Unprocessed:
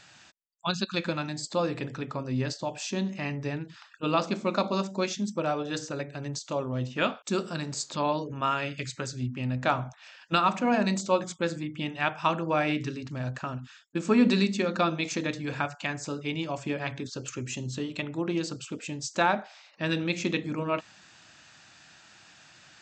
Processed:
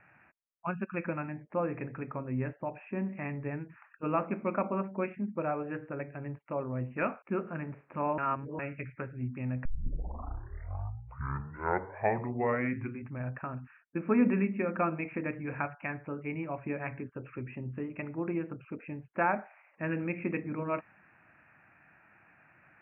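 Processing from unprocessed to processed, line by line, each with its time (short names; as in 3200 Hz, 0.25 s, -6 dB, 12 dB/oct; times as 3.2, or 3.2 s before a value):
8.18–8.59 reverse
9.65 tape start 3.62 s
whole clip: steep low-pass 2500 Hz 96 dB/oct; gain -4 dB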